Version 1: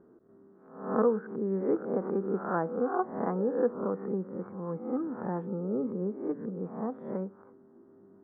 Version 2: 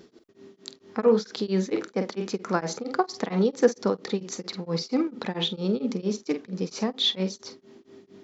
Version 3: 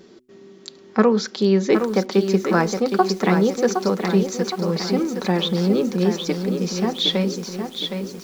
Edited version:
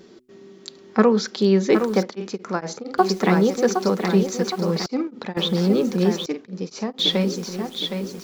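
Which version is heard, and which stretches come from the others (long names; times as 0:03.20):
3
0:02.03–0:02.98: punch in from 2
0:04.86–0:05.37: punch in from 2
0:06.26–0:06.99: punch in from 2
not used: 1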